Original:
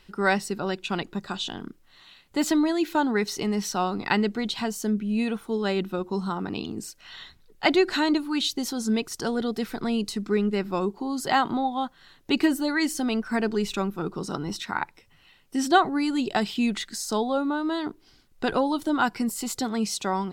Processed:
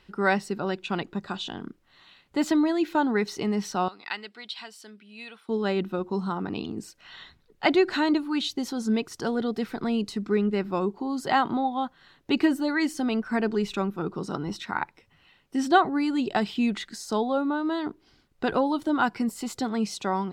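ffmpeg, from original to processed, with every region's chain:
ffmpeg -i in.wav -filter_complex "[0:a]asettb=1/sr,asplit=3[link_01][link_02][link_03];[link_01]atrim=end=3.884[link_04];[link_02]atrim=start=3.88:end=5.49,asetpts=PTS-STARTPTS,afade=type=in:duration=0.004:curve=qsin,afade=type=out:start_time=1.606:duration=0.004:curve=qsin,bandpass=frequency=4700:width_type=q:width=0.71,equalizer=frequency=6500:width_type=o:width=0.22:gain=-13.5[link_05];[link_03]atrim=start=5.486[link_06];[link_04][link_05]acrossfade=duration=0.004:curve1=hsin:curve2=qsin[link_07];[link_07][link_06]acrossfade=duration=0.004:curve1=qsin:curve2=hsin,highpass=frequency=42:poles=1,highshelf=frequency=5100:gain=-11" out.wav

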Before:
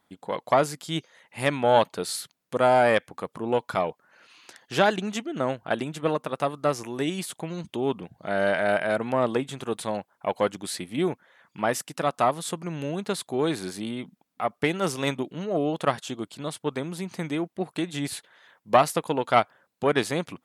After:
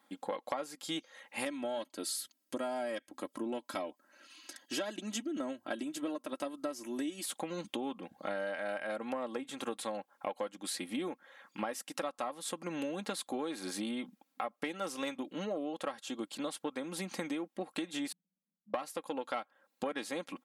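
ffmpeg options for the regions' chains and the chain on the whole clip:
ffmpeg -i in.wav -filter_complex "[0:a]asettb=1/sr,asplit=3[link_01][link_02][link_03];[link_01]atrim=end=1.454[link_04];[link_02]atrim=start=1.45:end=7.24,asetpts=PTS-STARTPTS,afade=type=in:duration=0.004:curve=qsin,afade=type=out:start_time=5.786:duration=0.004:curve=qsin,equalizer=frequency=1200:width_type=o:width=2.9:gain=-9,bandreject=frequency=3400:width=17,aecho=1:1:3.1:0.63,atrim=end_sample=255339[link_05];[link_03]atrim=start=7.236[link_06];[link_04][link_05]acrossfade=duration=0.004:curve1=hsin:curve2=qsin[link_07];[link_07][link_06]acrossfade=duration=0.004:curve1=qsin:curve2=hsin,asettb=1/sr,asplit=3[link_08][link_09][link_10];[link_08]atrim=end=18.124[link_11];[link_09]atrim=start=18.12:end=18.74,asetpts=PTS-STARTPTS,afade=type=in:duration=0.004:curve=qsin,afade=type=out:start_time=0.616:duration=0.004:curve=qsin,asuperpass=centerf=180:order=4:qfactor=4.5,acompressor=threshold=-49dB:ratio=6:attack=3.2:release=140:knee=1:detection=peak[link_12];[link_10]atrim=start=18.736[link_13];[link_11][link_12]acrossfade=duration=0.004:curve1=hsin:curve2=qsin[link_14];[link_14][link_13]acrossfade=duration=0.004:curve1=qsin:curve2=hsin,highpass=240,aecho=1:1:3.7:0.64,acompressor=threshold=-34dB:ratio=10" out.wav

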